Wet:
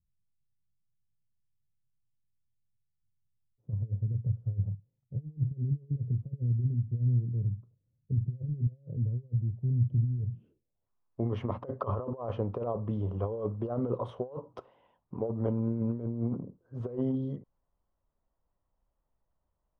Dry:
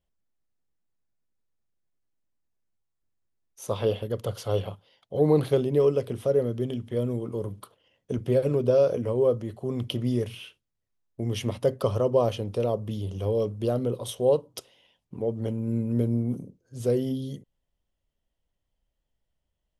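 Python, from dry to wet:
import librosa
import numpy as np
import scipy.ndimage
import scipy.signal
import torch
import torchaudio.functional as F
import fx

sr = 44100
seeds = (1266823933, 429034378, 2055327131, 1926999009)

y = fx.over_compress(x, sr, threshold_db=-28.0, ratio=-0.5)
y = fx.filter_sweep_lowpass(y, sr, from_hz=130.0, to_hz=1100.0, start_s=10.28, end_s=10.89, q=2.7)
y = y * librosa.db_to_amplitude(-4.0)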